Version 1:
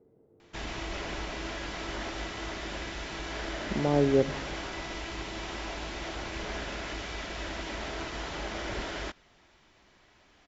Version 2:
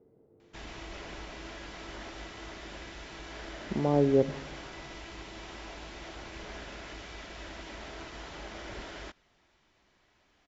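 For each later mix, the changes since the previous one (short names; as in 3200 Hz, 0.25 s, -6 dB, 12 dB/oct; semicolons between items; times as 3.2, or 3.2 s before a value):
background -7.0 dB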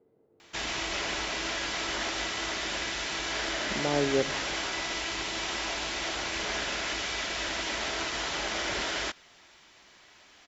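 background +11.0 dB; master: add tilt +2.5 dB/oct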